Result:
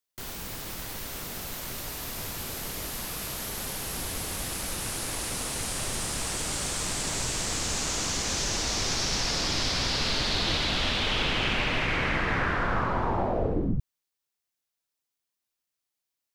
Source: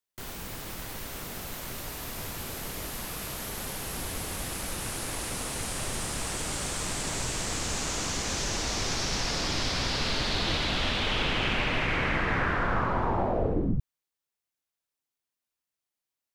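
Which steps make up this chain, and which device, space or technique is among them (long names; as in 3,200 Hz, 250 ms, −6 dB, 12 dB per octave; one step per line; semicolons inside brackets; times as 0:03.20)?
presence and air boost (parametric band 4,900 Hz +3 dB 1.4 octaves; high-shelf EQ 11,000 Hz +4 dB)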